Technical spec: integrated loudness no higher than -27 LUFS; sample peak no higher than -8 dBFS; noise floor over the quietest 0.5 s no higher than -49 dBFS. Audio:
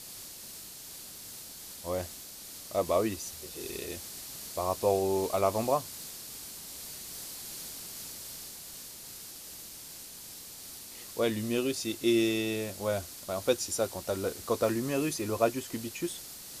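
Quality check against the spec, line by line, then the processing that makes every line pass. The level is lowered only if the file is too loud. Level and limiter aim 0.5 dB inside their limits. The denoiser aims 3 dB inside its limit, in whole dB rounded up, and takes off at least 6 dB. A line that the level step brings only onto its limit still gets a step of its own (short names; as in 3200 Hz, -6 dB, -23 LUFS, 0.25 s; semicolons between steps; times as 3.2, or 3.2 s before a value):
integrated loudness -33.5 LUFS: OK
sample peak -12.5 dBFS: OK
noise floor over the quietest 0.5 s -46 dBFS: fail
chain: denoiser 6 dB, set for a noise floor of -46 dBFS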